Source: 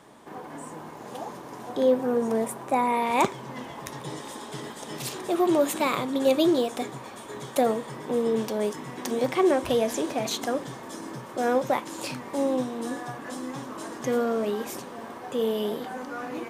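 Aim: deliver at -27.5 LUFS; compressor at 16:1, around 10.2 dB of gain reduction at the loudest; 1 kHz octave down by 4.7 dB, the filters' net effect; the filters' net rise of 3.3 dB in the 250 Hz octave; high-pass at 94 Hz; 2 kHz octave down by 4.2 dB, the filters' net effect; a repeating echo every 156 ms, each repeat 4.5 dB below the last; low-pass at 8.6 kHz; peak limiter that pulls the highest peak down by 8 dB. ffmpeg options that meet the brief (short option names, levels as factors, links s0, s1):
-af "highpass=94,lowpass=8600,equalizer=f=250:t=o:g=4.5,equalizer=f=1000:t=o:g=-6,equalizer=f=2000:t=o:g=-3.5,acompressor=threshold=0.0501:ratio=16,alimiter=limit=0.0668:level=0:latency=1,aecho=1:1:156|312|468|624|780|936|1092|1248|1404:0.596|0.357|0.214|0.129|0.0772|0.0463|0.0278|0.0167|0.01,volume=1.78"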